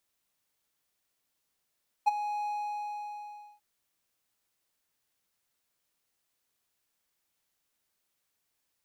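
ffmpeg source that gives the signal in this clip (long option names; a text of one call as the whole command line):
ffmpeg -f lavfi -i "aevalsrc='0.168*(1-4*abs(mod(833*t+0.25,1)-0.5))':duration=1.54:sample_rate=44100,afade=type=in:duration=0.019,afade=type=out:start_time=0.019:duration=0.02:silence=0.224,afade=type=out:start_time=0.4:duration=1.14" out.wav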